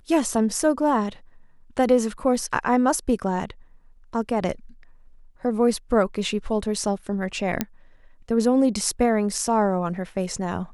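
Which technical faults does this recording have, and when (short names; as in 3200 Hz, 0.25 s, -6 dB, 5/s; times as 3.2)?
7.61 pop -7 dBFS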